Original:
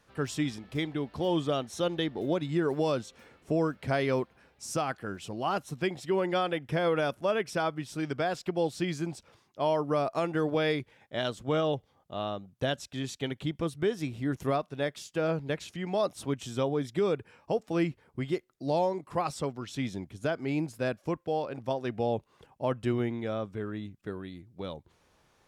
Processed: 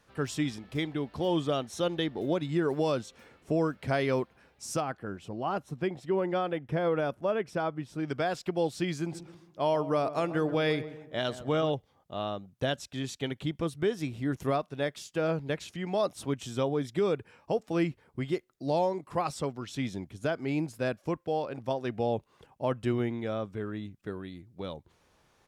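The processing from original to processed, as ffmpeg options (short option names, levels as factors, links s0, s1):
-filter_complex "[0:a]asettb=1/sr,asplit=3[s0][s1][s2];[s0]atrim=end=4.804[s3];[s1]atrim=start=4.8:end=8.08,asetpts=PTS-STARTPTS,afade=t=in:d=0.004:c=qsin,afade=t=out:st=3.276:d=0.004:c=qsin,highshelf=f=2100:g=-11[s4];[s2]atrim=start=8.076[s5];[s3][s4]acrossfade=d=0.004:c1=hsin:c2=qsin[s6];[s6][s5]acrossfade=d=0.004:c1=qsin:c2=hsin,asplit=3[s7][s8][s9];[s7]afade=t=out:st=9.11:d=0.02[s10];[s8]asplit=2[s11][s12];[s12]adelay=134,lowpass=f=1300:p=1,volume=0.237,asplit=2[s13][s14];[s14]adelay=134,lowpass=f=1300:p=1,volume=0.48,asplit=2[s15][s16];[s16]adelay=134,lowpass=f=1300:p=1,volume=0.48,asplit=2[s17][s18];[s18]adelay=134,lowpass=f=1300:p=1,volume=0.48,asplit=2[s19][s20];[s20]adelay=134,lowpass=f=1300:p=1,volume=0.48[s21];[s11][s13][s15][s17][s19][s21]amix=inputs=6:normalize=0,afade=t=in:st=9.11:d=0.02,afade=t=out:st=11.69:d=0.02[s22];[s9]afade=t=in:st=11.69:d=0.02[s23];[s10][s22][s23]amix=inputs=3:normalize=0"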